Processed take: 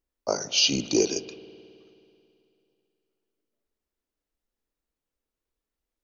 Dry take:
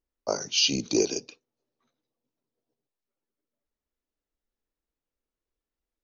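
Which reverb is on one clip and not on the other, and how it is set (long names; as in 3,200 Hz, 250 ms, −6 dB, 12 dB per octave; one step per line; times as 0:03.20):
spring reverb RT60 2.7 s, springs 54 ms, chirp 55 ms, DRR 14.5 dB
level +1.5 dB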